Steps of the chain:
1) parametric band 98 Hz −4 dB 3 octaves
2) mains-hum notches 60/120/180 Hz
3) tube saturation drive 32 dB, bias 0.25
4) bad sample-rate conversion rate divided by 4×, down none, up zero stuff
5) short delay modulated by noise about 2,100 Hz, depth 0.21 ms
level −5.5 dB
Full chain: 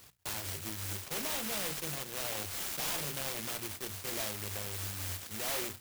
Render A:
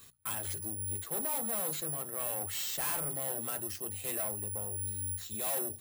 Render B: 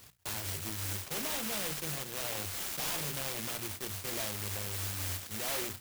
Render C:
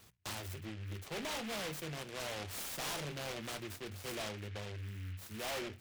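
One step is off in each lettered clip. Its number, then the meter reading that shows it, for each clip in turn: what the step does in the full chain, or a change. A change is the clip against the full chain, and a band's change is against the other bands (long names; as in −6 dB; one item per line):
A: 5, 4 kHz band −6.5 dB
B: 1, 125 Hz band +2.0 dB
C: 4, 8 kHz band −7.5 dB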